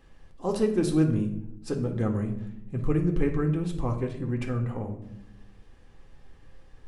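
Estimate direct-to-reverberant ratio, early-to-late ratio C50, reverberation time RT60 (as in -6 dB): 2.5 dB, 9.0 dB, 0.80 s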